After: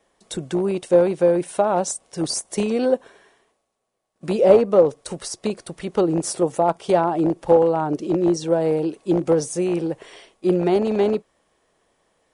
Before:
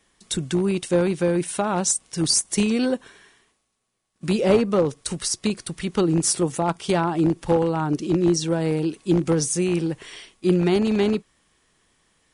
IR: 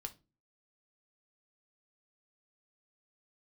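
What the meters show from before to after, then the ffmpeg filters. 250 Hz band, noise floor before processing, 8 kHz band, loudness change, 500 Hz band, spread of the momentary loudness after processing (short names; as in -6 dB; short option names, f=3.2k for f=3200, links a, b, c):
-1.0 dB, -71 dBFS, -6.5 dB, +2.0 dB, +5.0 dB, 11 LU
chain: -af "equalizer=f=600:w=0.86:g=15,volume=-6.5dB"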